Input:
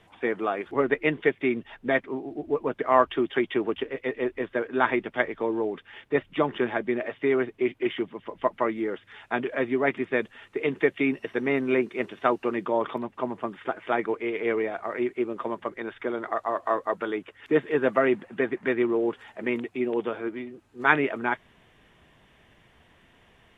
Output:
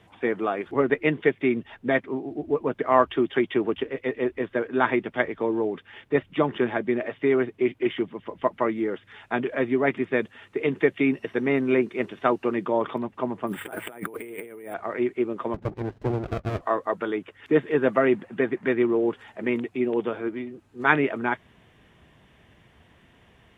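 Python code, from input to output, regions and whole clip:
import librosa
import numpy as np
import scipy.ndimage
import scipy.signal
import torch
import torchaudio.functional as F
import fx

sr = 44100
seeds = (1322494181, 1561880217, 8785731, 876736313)

y = fx.chain(x, sr, fx.resample_bad(factor=4, down='none', up='hold'),
    fx.notch(hz=1100.0, q=15.0),
    fx.over_compress(threshold_db=-39.0, ratio=-1.0), at=(13.47, 14.74))
y = fx.chain(y, sr, fx.lowpass(hz=2000.0, slope=12),
    fx.tilt_shelf(db=5.0, hz=720.0),
    fx.running_max(window=33), at=(15.54, 16.61))
y = scipy.signal.sosfilt(scipy.signal.butter(2, 49.0, 'highpass', fs=sr, output='sos'), y)
y = fx.low_shelf(y, sr, hz=280.0, db=6.0)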